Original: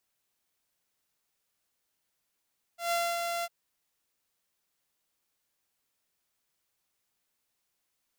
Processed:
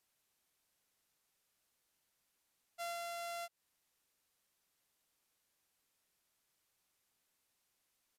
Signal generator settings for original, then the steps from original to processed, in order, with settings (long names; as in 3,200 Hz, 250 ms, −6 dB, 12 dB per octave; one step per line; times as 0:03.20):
note with an ADSR envelope saw 686 Hz, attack 138 ms, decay 256 ms, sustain −4.5 dB, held 0.66 s, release 42 ms −23.5 dBFS
downsampling to 32,000 Hz
downward compressor 12 to 1, threshold −41 dBFS